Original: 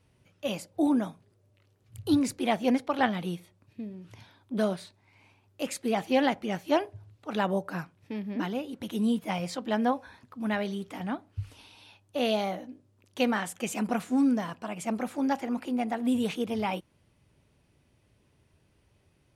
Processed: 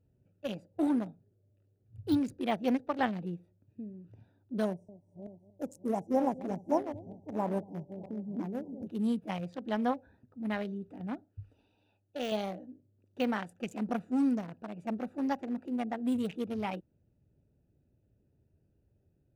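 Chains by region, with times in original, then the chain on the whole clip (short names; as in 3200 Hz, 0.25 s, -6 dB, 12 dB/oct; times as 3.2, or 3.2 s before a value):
4.65–8.87 regenerating reverse delay 0.31 s, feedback 49%, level -10 dB + brick-wall FIR band-stop 1100–5100 Hz + echo 0.235 s -17 dB
11.24–12.32 self-modulated delay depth 0.058 ms + low shelf 330 Hz -7.5 dB
whole clip: Wiener smoothing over 41 samples; de-esser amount 95%; gain -3.5 dB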